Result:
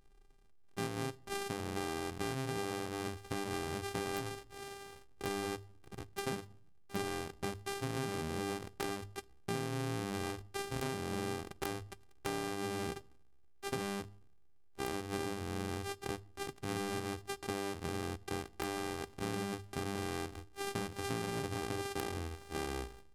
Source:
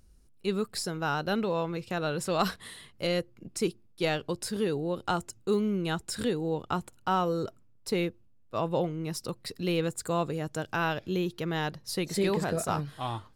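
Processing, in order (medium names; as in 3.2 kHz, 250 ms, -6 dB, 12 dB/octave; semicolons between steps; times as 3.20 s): sorted samples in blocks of 64 samples; speed mistake 78 rpm record played at 45 rpm; in parallel at -11.5 dB: bit crusher 8-bit; on the sum: hum notches 50/100 Hz; on a send at -22 dB: reverberation RT60 0.50 s, pre-delay 6 ms; on the sum: compression 20:1, threshold -30 dBFS, peak gain reduction 12.5 dB; integer overflow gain 20.5 dB; trim -4 dB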